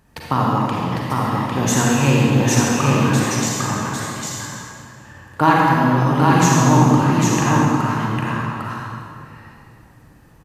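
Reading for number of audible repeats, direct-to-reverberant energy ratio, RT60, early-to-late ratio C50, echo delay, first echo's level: 1, −6.0 dB, 2.4 s, −5.5 dB, 802 ms, −3.0 dB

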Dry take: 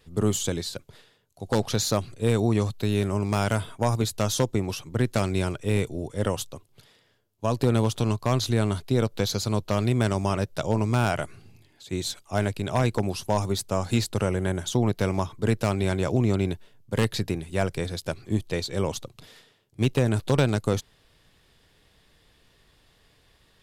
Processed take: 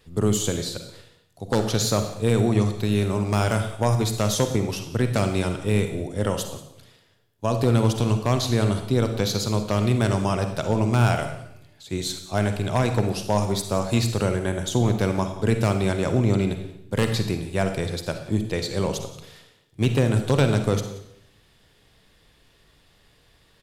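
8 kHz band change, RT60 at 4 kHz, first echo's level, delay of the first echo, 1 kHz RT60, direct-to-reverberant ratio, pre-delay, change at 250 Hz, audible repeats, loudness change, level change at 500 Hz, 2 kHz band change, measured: +2.5 dB, 0.70 s, −19.0 dB, 180 ms, 0.70 s, 6.5 dB, 39 ms, +2.5 dB, 1, +2.5 dB, +2.5 dB, +2.5 dB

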